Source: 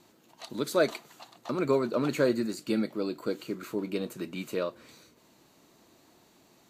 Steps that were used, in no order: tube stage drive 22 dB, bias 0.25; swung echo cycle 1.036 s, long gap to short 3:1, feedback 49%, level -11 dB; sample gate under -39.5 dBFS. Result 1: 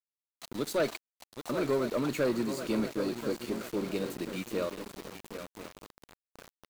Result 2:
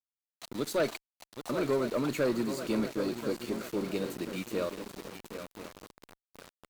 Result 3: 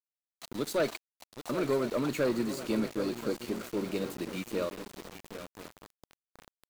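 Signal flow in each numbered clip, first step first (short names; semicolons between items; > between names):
swung echo > tube stage > sample gate; swung echo > sample gate > tube stage; tube stage > swung echo > sample gate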